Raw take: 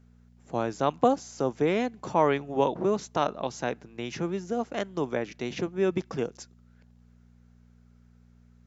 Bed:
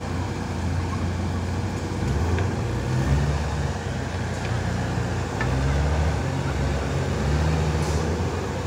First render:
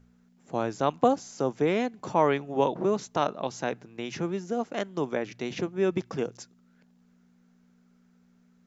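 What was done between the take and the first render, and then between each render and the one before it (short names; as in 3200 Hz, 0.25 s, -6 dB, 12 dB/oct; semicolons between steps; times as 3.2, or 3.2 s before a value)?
de-hum 60 Hz, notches 2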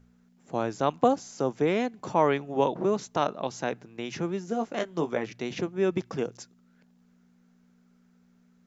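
4.46–5.3 doubler 18 ms -7 dB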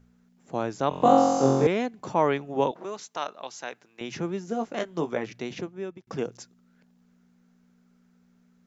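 0.89–1.67 flutter echo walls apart 3.8 m, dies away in 1.4 s; 2.71–4.01 HPF 1300 Hz 6 dB/oct; 5.39–6.07 fade out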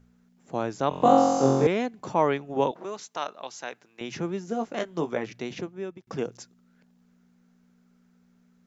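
2.17–2.58 transient shaper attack +3 dB, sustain -2 dB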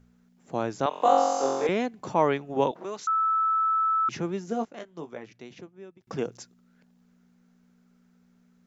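0.86–1.69 HPF 530 Hz; 3.07–4.09 bleep 1310 Hz -21 dBFS; 4.65–6.01 gain -10.5 dB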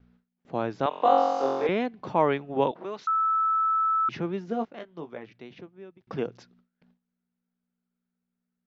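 LPF 4200 Hz 24 dB/oct; gate with hold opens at -53 dBFS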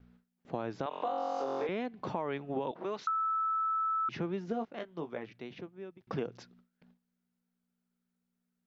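limiter -19 dBFS, peak gain reduction 10.5 dB; compressor 5:1, threshold -31 dBFS, peak gain reduction 7.5 dB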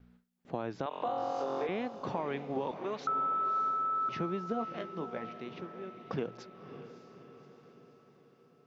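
diffused feedback echo 0.594 s, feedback 55%, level -11 dB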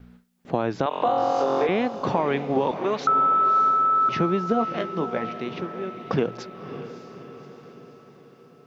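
gain +12 dB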